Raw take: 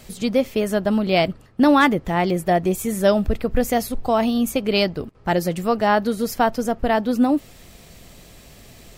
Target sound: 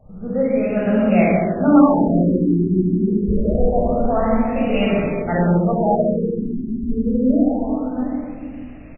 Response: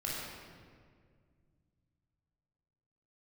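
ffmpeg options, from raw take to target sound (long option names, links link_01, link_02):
-filter_complex "[0:a]aecho=1:1:69|113|725:0.447|0.15|0.316[link_01];[1:a]atrim=start_sample=2205[link_02];[link_01][link_02]afir=irnorm=-1:irlink=0,afftfilt=real='re*lt(b*sr/1024,410*pow(3000/410,0.5+0.5*sin(2*PI*0.26*pts/sr)))':imag='im*lt(b*sr/1024,410*pow(3000/410,0.5+0.5*sin(2*PI*0.26*pts/sr)))':win_size=1024:overlap=0.75,volume=-3dB"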